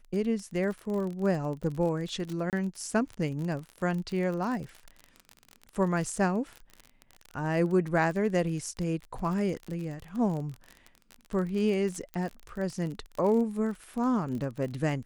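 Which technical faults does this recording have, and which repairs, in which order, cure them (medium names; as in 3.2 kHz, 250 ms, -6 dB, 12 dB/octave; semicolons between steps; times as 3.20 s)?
crackle 34 per s -34 dBFS
2.50–2.53 s: dropout 28 ms
12.14 s: pop -24 dBFS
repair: de-click; interpolate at 2.50 s, 28 ms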